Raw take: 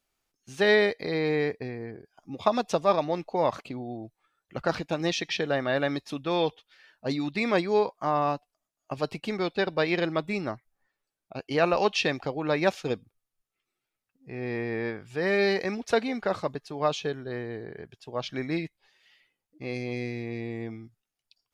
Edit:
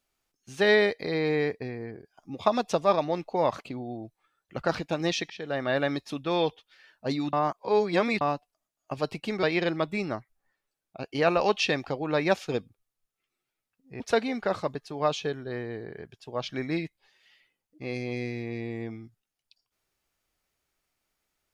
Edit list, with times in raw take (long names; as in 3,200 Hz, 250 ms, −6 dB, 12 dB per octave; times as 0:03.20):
0:05.30–0:05.69: fade in, from −19 dB
0:07.33–0:08.21: reverse
0:09.43–0:09.79: remove
0:14.36–0:15.80: remove